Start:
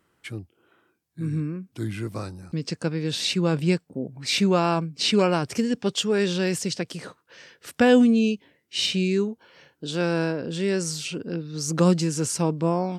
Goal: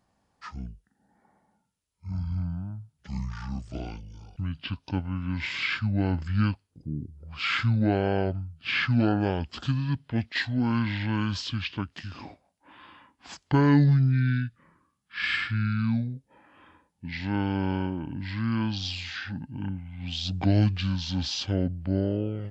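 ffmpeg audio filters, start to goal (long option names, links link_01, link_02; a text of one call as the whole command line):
ffmpeg -i in.wav -af "asetrate=25442,aresample=44100,volume=-3.5dB" out.wav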